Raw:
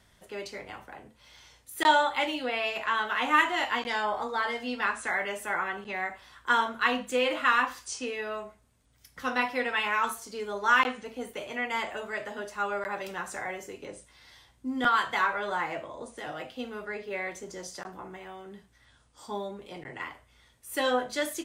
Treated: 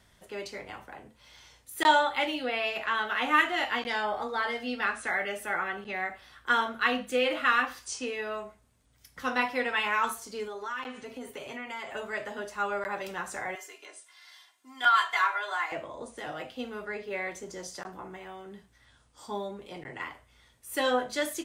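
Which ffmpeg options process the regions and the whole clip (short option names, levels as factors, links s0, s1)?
-filter_complex "[0:a]asettb=1/sr,asplit=3[s0][s1][s2];[s0]atrim=end=1.994[s3];[s1]atrim=start=1.99:end=7.83,asetpts=PTS-STARTPTS,afade=t=in:d=0.004:c=qsin,afade=t=out:st=5.836:d=0.004:c=qsin,equalizer=f=7300:w=3.2:g=-5.5,bandreject=f=1000:w=6.2[s4];[s2]atrim=start=7.826[s5];[s3][s4]acrossfade=d=0.004:c1=hsin:c2=qsin[s6];[s6][s5]acrossfade=d=0.004:c1=qsin:c2=hsin,asettb=1/sr,asplit=3[s7][s8][s9];[s7]atrim=end=10.474[s10];[s8]atrim=start=10.47:end=11.95,asetpts=PTS-STARTPTS,afade=t=in:d=0.004:c=qsin,afade=t=out:st=1.476:d=0.004:c=qsin,aecho=1:1:7.4:0.52,atrim=end_sample=65268,acompressor=threshold=0.0141:ratio=3:attack=3.2:release=140:knee=1:detection=peak[s11];[s9]atrim=start=11.946[s12];[s10][s11]acrossfade=d=0.004:c1=hsin:c2=qsin[s13];[s13][s12]acrossfade=d=0.004:c1=qsin:c2=hsin,asettb=1/sr,asplit=3[s14][s15][s16];[s14]atrim=end=13.554[s17];[s15]atrim=start=13.55:end=15.72,asetpts=PTS-STARTPTS,afade=t=in:d=0.004:c=qsin,afade=t=out:st=2.166:d=0.004:c=qsin,highpass=930,aecho=1:1:2.9:0.72,atrim=end_sample=95697[s18];[s16]atrim=start=15.716[s19];[s17][s18]acrossfade=d=0.004:c1=hsin:c2=qsin[s20];[s20][s19]acrossfade=d=0.004:c1=qsin:c2=hsin"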